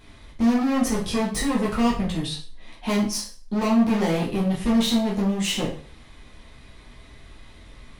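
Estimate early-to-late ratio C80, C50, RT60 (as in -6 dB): 12.0 dB, 7.0 dB, 0.45 s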